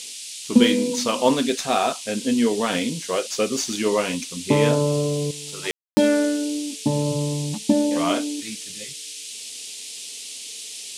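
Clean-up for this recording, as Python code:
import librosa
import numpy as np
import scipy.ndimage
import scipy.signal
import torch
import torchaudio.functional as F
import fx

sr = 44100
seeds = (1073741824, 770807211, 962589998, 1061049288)

y = fx.fix_declick_ar(x, sr, threshold=6.5)
y = fx.fix_ambience(y, sr, seeds[0], print_start_s=9.75, print_end_s=10.25, start_s=5.71, end_s=5.97)
y = fx.noise_reduce(y, sr, print_start_s=9.75, print_end_s=10.25, reduce_db=30.0)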